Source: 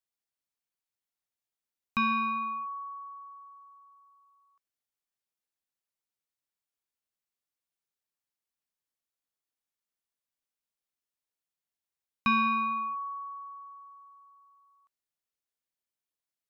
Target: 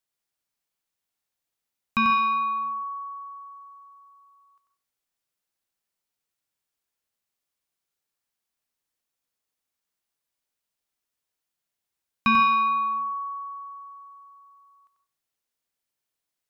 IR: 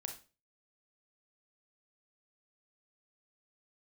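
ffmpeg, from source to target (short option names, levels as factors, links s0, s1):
-filter_complex "[0:a]asplit=2[s0][s1];[1:a]atrim=start_sample=2205,adelay=92[s2];[s1][s2]afir=irnorm=-1:irlink=0,volume=0.841[s3];[s0][s3]amix=inputs=2:normalize=0,volume=1.78"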